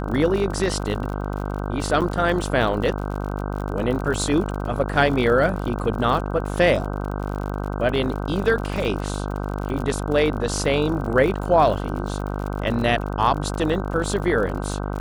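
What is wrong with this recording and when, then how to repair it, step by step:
mains buzz 50 Hz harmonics 31 −27 dBFS
surface crackle 54 per second −29 dBFS
0:02.01–0:02.02: drop-out 7.6 ms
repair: click removal
hum removal 50 Hz, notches 31
repair the gap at 0:02.01, 7.6 ms

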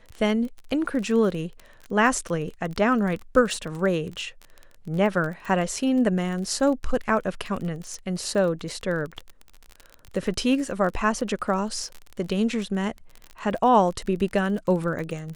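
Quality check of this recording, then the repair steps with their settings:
surface crackle 25 per second −30 dBFS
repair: click removal

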